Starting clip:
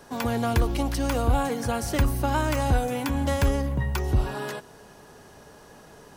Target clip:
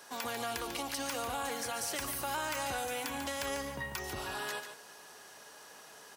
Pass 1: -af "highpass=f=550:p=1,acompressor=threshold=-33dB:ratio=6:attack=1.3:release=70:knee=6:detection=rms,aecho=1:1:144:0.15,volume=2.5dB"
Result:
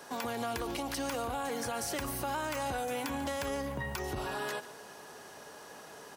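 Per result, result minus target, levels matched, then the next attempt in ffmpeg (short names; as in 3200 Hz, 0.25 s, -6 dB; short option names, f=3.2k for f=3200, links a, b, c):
echo-to-direct -8.5 dB; 500 Hz band +3.0 dB
-af "highpass=f=550:p=1,acompressor=threshold=-33dB:ratio=6:attack=1.3:release=70:knee=6:detection=rms,aecho=1:1:144:0.398,volume=2.5dB"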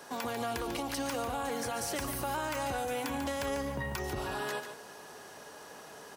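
500 Hz band +3.0 dB
-af "highpass=f=1.8k:p=1,acompressor=threshold=-33dB:ratio=6:attack=1.3:release=70:knee=6:detection=rms,aecho=1:1:144:0.398,volume=2.5dB"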